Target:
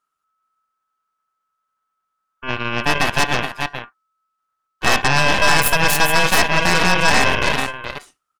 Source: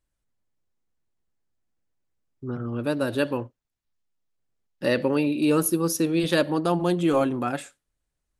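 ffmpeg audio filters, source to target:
ffmpeg -i in.wav -af "aeval=exprs='val(0)*sin(2*PI*1300*n/s)':channel_layout=same,aecho=1:1:422:0.422,aeval=exprs='0.316*(cos(1*acos(clip(val(0)/0.316,-1,1)))-cos(1*PI/2))+0.126*(cos(8*acos(clip(val(0)/0.316,-1,1)))-cos(8*PI/2))':channel_layout=same,volume=4.5dB" out.wav

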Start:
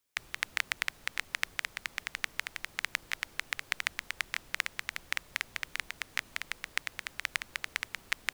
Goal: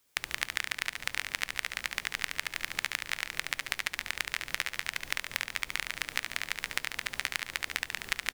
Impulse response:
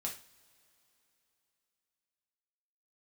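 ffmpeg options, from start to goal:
-filter_complex "[0:a]acompressor=threshold=-37dB:ratio=6,aecho=1:1:71|142|213|284|355|426|497|568:0.501|0.291|0.169|0.0978|0.0567|0.0329|0.0191|0.0111,asplit=2[link_01][link_02];[1:a]atrim=start_sample=2205,asetrate=57330,aresample=44100[link_03];[link_02][link_03]afir=irnorm=-1:irlink=0,volume=-18dB[link_04];[link_01][link_04]amix=inputs=2:normalize=0,volume=8.5dB"

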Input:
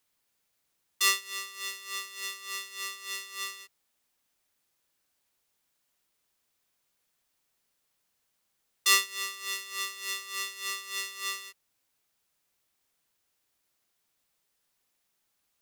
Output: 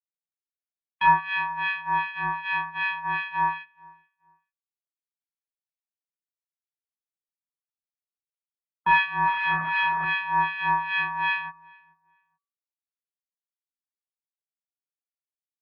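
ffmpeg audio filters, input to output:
ffmpeg -i in.wav -filter_complex "[0:a]asettb=1/sr,asplit=3[link_01][link_02][link_03];[link_01]atrim=end=9.264[link_04];[link_02]atrim=start=9.26:end=10.05,asetpts=PTS-STARTPTS,afade=type=in:duration=0.004:curve=qsin,afade=type=out:start_time=0.786:duration=0.004:curve=qsin,aeval=exprs='val(0)+0.5*0.0119*sgn(val(0))':channel_layout=same[link_05];[link_03]atrim=start=10.046[link_06];[link_04][link_05]acrossfade=duration=0.004:curve1=hsin:curve2=qsin[link_07];[link_07][link_06]acrossfade=duration=0.004:curve1=qsin:curve2=hsin,asplit=2[link_08][link_09];[link_09]highpass=frequency=720:poles=1,volume=22dB,asoftclip=type=tanh:threshold=-3dB[link_10];[link_08][link_10]amix=inputs=2:normalize=0,lowpass=frequency=2100:poles=1,volume=-6dB,afftfilt=real='re*gte(hypot(re,im),0.0112)':imag='im*gte(hypot(re,im),0.0112)':win_size=1024:overlap=0.75,agate=range=-23dB:threshold=-33dB:ratio=16:detection=peak,equalizer=frequency=1400:width=3.3:gain=14,acontrast=42,bandreject=frequency=275.4:width_type=h:width=4,bandreject=frequency=550.8:width_type=h:width=4,bandreject=frequency=826.2:width_type=h:width=4,bandreject=frequency=1101.6:width_type=h:width=4,bandreject=frequency=1377:width_type=h:width=4,bandreject=frequency=1652.4:width_type=h:width=4,bandreject=frequency=1927.8:width_type=h:width=4,bandreject=frequency=2203.2:width_type=h:width=4,bandreject=frequency=2478.6:width_type=h:width=4,bandreject=frequency=2754:width_type=h:width=4,bandreject=frequency=3029.4:width_type=h:width=4,bandreject=frequency=3304.8:width_type=h:width=4,bandreject=frequency=3580.2:width_type=h:width=4,bandreject=frequency=3855.6:width_type=h:width=4,bandreject=frequency=4131:width_type=h:width=4,bandreject=frequency=4406.4:width_type=h:width=4,bandreject=frequency=4681.8:width_type=h:width=4,bandreject=frequency=4957.2:width_type=h:width=4,bandreject=frequency=5232.6:width_type=h:width=4,bandreject=frequency=5508:width_type=h:width=4,bandreject=frequency=5783.4:width_type=h:width=4,bandreject=frequency=6058.8:width_type=h:width=4,bandreject=frequency=6334.2:width_type=h:width=4,bandreject=frequency=6609.6:width_type=h:width=4,bandreject=frequency=6885:width_type=h:width=4,bandreject=frequency=7160.4:width_type=h:width=4,bandreject=frequency=7435.8:width_type=h:width=4,bandreject=frequency=7711.2:width_type=h:width=4,bandreject=frequency=7986.6:width_type=h:width=4,acrossover=split=1700[link_11][link_12];[link_11]aeval=exprs='val(0)*(1-1/2+1/2*cos(2*PI*2.6*n/s))':channel_layout=same[link_13];[link_12]aeval=exprs='val(0)*(1-1/2-1/2*cos(2*PI*2.6*n/s))':channel_layout=same[link_14];[link_13][link_14]amix=inputs=2:normalize=0,asplit=2[link_15][link_16];[link_16]adelay=431,lowpass=frequency=1600:poles=1,volume=-23.5dB,asplit=2[link_17][link_18];[link_18]adelay=431,lowpass=frequency=1600:poles=1,volume=0.28[link_19];[link_15][link_17][link_19]amix=inputs=3:normalize=0,highpass=frequency=180:width_type=q:width=0.5412,highpass=frequency=180:width_type=q:width=1.307,lowpass=frequency=3000:width_type=q:width=0.5176,lowpass=frequency=3000:width_type=q:width=0.7071,lowpass=frequency=3000:width_type=q:width=1.932,afreqshift=-230,volume=-1.5dB" out.wav

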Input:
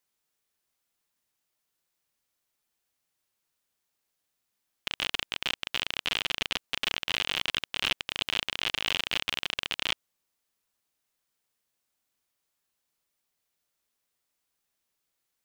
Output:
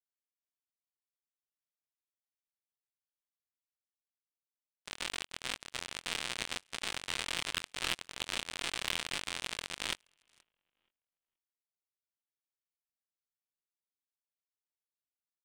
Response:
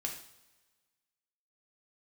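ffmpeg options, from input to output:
-filter_complex "[0:a]afftfilt=real='re':imag='-im':win_size=2048:overlap=0.75,agate=range=-33dB:threshold=-36dB:ratio=3:detection=peak,areverse,acompressor=mode=upward:threshold=-56dB:ratio=2.5,areverse,asplit=2[link_01][link_02];[link_02]adelay=476,lowpass=frequency=2600:poles=1,volume=-8dB,asplit=2[link_03][link_04];[link_04]adelay=476,lowpass=frequency=2600:poles=1,volume=0.21,asplit=2[link_05][link_06];[link_06]adelay=476,lowpass=frequency=2600:poles=1,volume=0.21[link_07];[link_01][link_03][link_05][link_07]amix=inputs=4:normalize=0,aeval=exprs='0.224*(cos(1*acos(clip(val(0)/0.224,-1,1)))-cos(1*PI/2))+0.00708*(cos(3*acos(clip(val(0)/0.224,-1,1)))-cos(3*PI/2))+0.0316*(cos(7*acos(clip(val(0)/0.224,-1,1)))-cos(7*PI/2))':channel_layout=same"

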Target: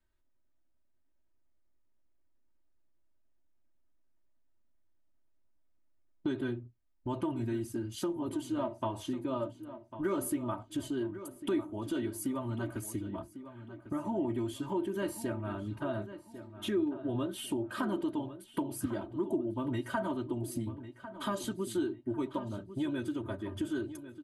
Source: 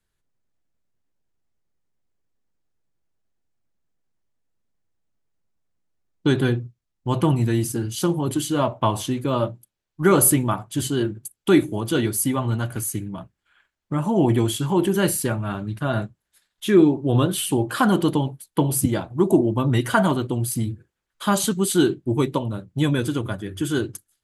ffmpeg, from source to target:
ffmpeg -i in.wav -filter_complex "[0:a]highshelf=frequency=3200:gain=-11,aecho=1:1:3.2:0.84,acompressor=threshold=-33dB:ratio=2.5,asplit=2[link_01][link_02];[link_02]adelay=1099,lowpass=frequency=3100:poles=1,volume=-12.5dB,asplit=2[link_03][link_04];[link_04]adelay=1099,lowpass=frequency=3100:poles=1,volume=0.35,asplit=2[link_05][link_06];[link_06]adelay=1099,lowpass=frequency=3100:poles=1,volume=0.35,asplit=2[link_07][link_08];[link_08]adelay=1099,lowpass=frequency=3100:poles=1,volume=0.35[link_09];[link_01][link_03][link_05][link_07][link_09]amix=inputs=5:normalize=0,volume=-4dB" out.wav

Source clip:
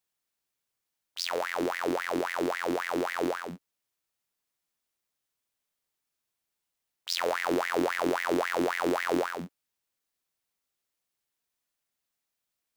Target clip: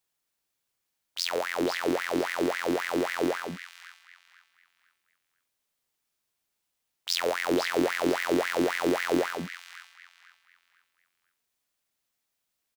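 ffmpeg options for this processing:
ffmpeg -i in.wav -filter_complex "[0:a]acrossover=split=630|1700[link_01][link_02][link_03];[link_02]alimiter=level_in=7.5dB:limit=-24dB:level=0:latency=1,volume=-7.5dB[link_04];[link_03]asplit=2[link_05][link_06];[link_06]adelay=497,lowpass=frequency=4700:poles=1,volume=-5.5dB,asplit=2[link_07][link_08];[link_08]adelay=497,lowpass=frequency=4700:poles=1,volume=0.33,asplit=2[link_09][link_10];[link_10]adelay=497,lowpass=frequency=4700:poles=1,volume=0.33,asplit=2[link_11][link_12];[link_12]adelay=497,lowpass=frequency=4700:poles=1,volume=0.33[link_13];[link_05][link_07][link_09][link_11][link_13]amix=inputs=5:normalize=0[link_14];[link_01][link_04][link_14]amix=inputs=3:normalize=0,volume=3dB" out.wav

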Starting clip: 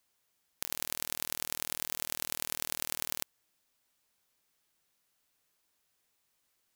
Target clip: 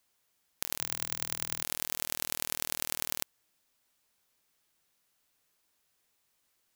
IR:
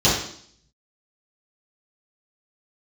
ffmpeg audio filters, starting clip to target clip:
-filter_complex "[0:a]asettb=1/sr,asplit=3[link_01][link_02][link_03];[link_01]atrim=end=0.784[link_04];[link_02]atrim=start=0.78:end=1.63,asetpts=PTS-STARTPTS,afade=type=in:duration=0.004:curve=qsin,afade=type=out:start_time=0.846:duration=0.004:curve=qsin,afreqshift=-170[link_05];[link_03]atrim=start=1.626[link_06];[link_04][link_05]acrossfade=duration=0.004:curve1=hsin:curve2=qsin[link_07];[link_07][link_06]acrossfade=duration=0.004:curve1=qsin:curve2=hsin,volume=1.5dB"

